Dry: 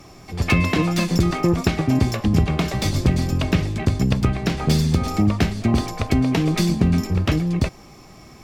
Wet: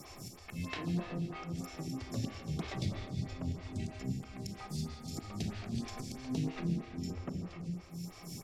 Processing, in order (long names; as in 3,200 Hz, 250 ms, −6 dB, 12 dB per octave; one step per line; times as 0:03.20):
mains-hum notches 60/120/180/240/300 Hz
volume swells 671 ms
parametric band 120 Hz +9.5 dB 1.7 octaves
treble cut that deepens with the level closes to 1,300 Hz, closed at −15.5 dBFS
downward compressor 4 to 1, threshold −26 dBFS, peak gain reduction 12.5 dB
first-order pre-emphasis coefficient 0.8
single-tap delay 255 ms −14.5 dB
four-comb reverb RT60 2.6 s, combs from 27 ms, DRR 2 dB
phaser with staggered stages 3.1 Hz
level +7 dB